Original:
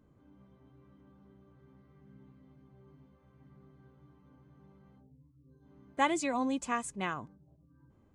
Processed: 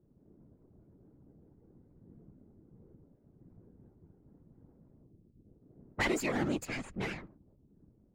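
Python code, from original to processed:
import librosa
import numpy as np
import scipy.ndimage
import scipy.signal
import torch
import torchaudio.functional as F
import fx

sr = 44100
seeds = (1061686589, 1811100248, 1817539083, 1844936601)

y = fx.lower_of_two(x, sr, delay_ms=0.43)
y = fx.whisperise(y, sr, seeds[0])
y = fx.env_lowpass(y, sr, base_hz=500.0, full_db=-31.5)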